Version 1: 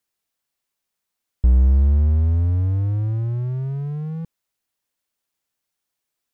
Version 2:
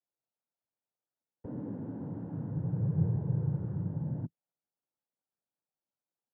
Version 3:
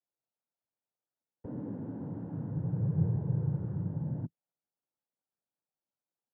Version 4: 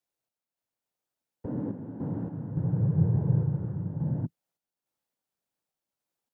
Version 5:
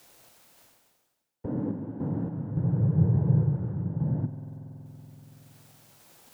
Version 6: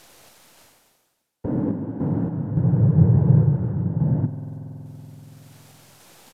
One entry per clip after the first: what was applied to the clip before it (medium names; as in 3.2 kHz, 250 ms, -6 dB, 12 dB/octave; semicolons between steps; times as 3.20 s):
Chebyshev low-pass 940 Hz, order 4; noise-vocoded speech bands 8; trim -6.5 dB
no audible change
random-step tremolo; trim +7 dB
spring tank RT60 1.8 s, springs 47 ms, chirp 40 ms, DRR 12.5 dB; reverse; upward compressor, threshold -34 dBFS; reverse; trim +2 dB
tracing distortion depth 0.12 ms; resampled via 32 kHz; trim +7 dB